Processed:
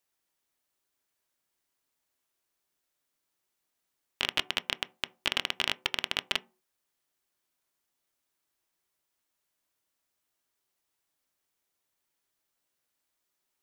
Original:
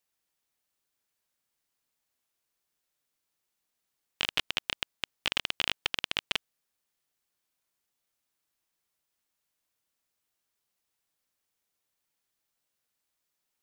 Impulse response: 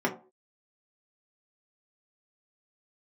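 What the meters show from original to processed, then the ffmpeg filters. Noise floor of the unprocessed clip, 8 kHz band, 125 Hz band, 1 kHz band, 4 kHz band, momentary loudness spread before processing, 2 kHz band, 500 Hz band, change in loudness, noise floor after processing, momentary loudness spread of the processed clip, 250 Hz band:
-83 dBFS, +0.5 dB, 0.0 dB, +2.0 dB, +0.5 dB, 5 LU, +0.5 dB, +2.0 dB, +0.5 dB, -82 dBFS, 5 LU, +2.0 dB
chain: -filter_complex "[0:a]asplit=2[a][b];[1:a]atrim=start_sample=2205[c];[b][c]afir=irnorm=-1:irlink=0,volume=-21dB[d];[a][d]amix=inputs=2:normalize=0"

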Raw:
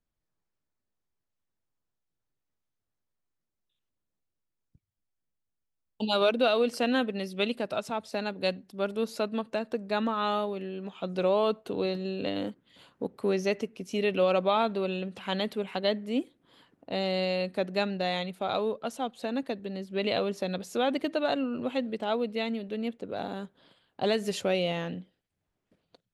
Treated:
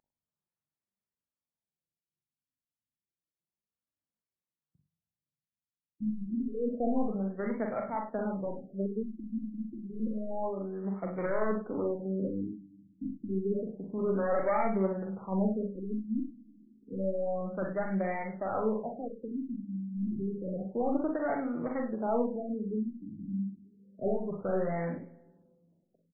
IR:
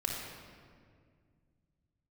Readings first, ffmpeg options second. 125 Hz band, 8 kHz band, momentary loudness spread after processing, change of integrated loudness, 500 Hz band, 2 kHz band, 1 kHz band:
+0.5 dB, n/a, 8 LU, -4.0 dB, -4.5 dB, -9.0 dB, -5.0 dB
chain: -filter_complex "[0:a]highpass=92,agate=range=-8dB:threshold=-55dB:ratio=16:detection=peak,lowshelf=f=200:g=3.5,asoftclip=type=hard:threshold=-23.5dB,flanger=delay=3.1:depth=3.5:regen=45:speed=0.76:shape=triangular,aeval=exprs='val(0)+0.00794*sin(2*PI*7500*n/s)':c=same,asplit=2[a][b];[b]adelay=42,volume=-4.5dB[c];[a][c]amix=inputs=2:normalize=0,aecho=1:1:41|61:0.282|0.422,asplit=2[d][e];[1:a]atrim=start_sample=2205,asetrate=66150,aresample=44100[f];[e][f]afir=irnorm=-1:irlink=0,volume=-17.5dB[g];[d][g]amix=inputs=2:normalize=0,afftfilt=real='re*lt(b*sr/1024,310*pow(2400/310,0.5+0.5*sin(2*PI*0.29*pts/sr)))':imag='im*lt(b*sr/1024,310*pow(2400/310,0.5+0.5*sin(2*PI*0.29*pts/sr)))':win_size=1024:overlap=0.75"

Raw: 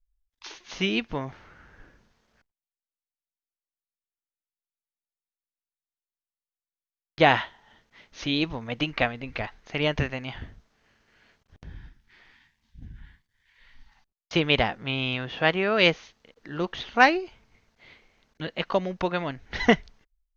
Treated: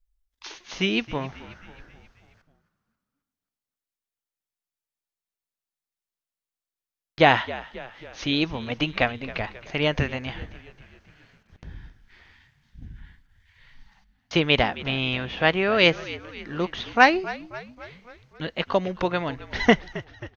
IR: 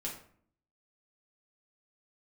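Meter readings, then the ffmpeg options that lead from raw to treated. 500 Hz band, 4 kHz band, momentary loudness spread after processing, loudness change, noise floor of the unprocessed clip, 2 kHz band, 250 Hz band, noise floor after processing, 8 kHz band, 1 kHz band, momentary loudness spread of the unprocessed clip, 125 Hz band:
+2.0 dB, +2.0 dB, 20 LU, +1.5 dB, under -85 dBFS, +2.0 dB, +2.0 dB, under -85 dBFS, n/a, +2.0 dB, 18 LU, +2.0 dB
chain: -filter_complex "[0:a]asplit=6[a][b][c][d][e][f];[b]adelay=268,afreqshift=-61,volume=-17dB[g];[c]adelay=536,afreqshift=-122,volume=-22dB[h];[d]adelay=804,afreqshift=-183,volume=-27.1dB[i];[e]adelay=1072,afreqshift=-244,volume=-32.1dB[j];[f]adelay=1340,afreqshift=-305,volume=-37.1dB[k];[a][g][h][i][j][k]amix=inputs=6:normalize=0,volume=2dB"

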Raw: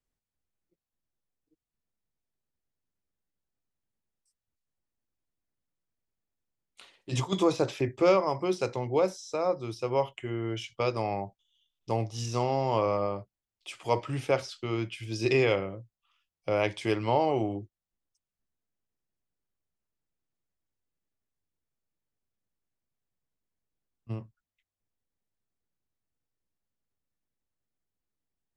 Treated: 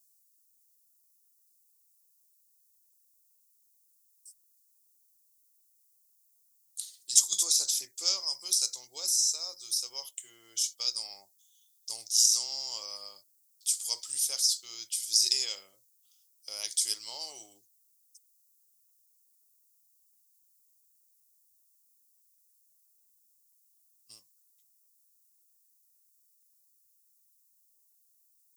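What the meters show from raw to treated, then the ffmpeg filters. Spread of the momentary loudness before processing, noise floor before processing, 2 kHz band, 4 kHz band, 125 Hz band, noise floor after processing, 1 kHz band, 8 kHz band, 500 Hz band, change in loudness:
15 LU, under -85 dBFS, -15.5 dB, +11.5 dB, under -35 dB, -69 dBFS, -22.5 dB, +21.5 dB, -28.0 dB, +1.0 dB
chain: -filter_complex "[0:a]aderivative,acrossover=split=2800[a][b];[b]aexciter=amount=11.1:drive=9:freq=3.7k[c];[a][c]amix=inputs=2:normalize=0,volume=-5dB"

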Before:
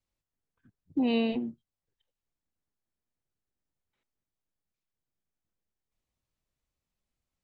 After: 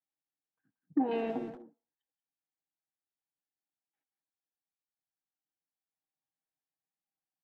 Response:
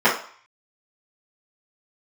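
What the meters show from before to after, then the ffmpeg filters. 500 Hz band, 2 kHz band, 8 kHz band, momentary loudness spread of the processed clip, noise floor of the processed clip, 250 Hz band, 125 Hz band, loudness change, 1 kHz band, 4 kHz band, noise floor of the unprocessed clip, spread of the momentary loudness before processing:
-1.5 dB, -7.0 dB, n/a, 14 LU, under -85 dBFS, -5.0 dB, -6.5 dB, -4.0 dB, +3.5 dB, -15.0 dB, under -85 dBFS, 10 LU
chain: -filter_complex "[0:a]afwtdn=0.00891,acrossover=split=2700[a][b];[b]acompressor=threshold=-53dB:ratio=4:attack=1:release=60[c];[a][c]amix=inputs=2:normalize=0,equalizer=f=740:w=6.6:g=8.5,aecho=1:1:6.3:0.71,acompressor=threshold=-30dB:ratio=6,aeval=exprs='0.0794*(cos(1*acos(clip(val(0)/0.0794,-1,1)))-cos(1*PI/2))+0.00282*(cos(6*acos(clip(val(0)/0.0794,-1,1)))-cos(6*PI/2))':c=same,flanger=delay=0.1:depth=8.9:regen=-86:speed=1.9:shape=triangular,highpass=150,equalizer=f=270:t=q:w=4:g=9,equalizer=f=820:t=q:w=4:g=8,equalizer=f=1.7k:t=q:w=4:g=9,lowpass=f=3.9k:w=0.5412,lowpass=f=3.9k:w=1.3066,asplit=2[d][e];[e]adelay=180,highpass=300,lowpass=3.4k,asoftclip=type=hard:threshold=-38.5dB,volume=-9dB[f];[d][f]amix=inputs=2:normalize=0,asplit=2[g][h];[1:a]atrim=start_sample=2205[i];[h][i]afir=irnorm=-1:irlink=0,volume=-42dB[j];[g][j]amix=inputs=2:normalize=0,volume=3.5dB"

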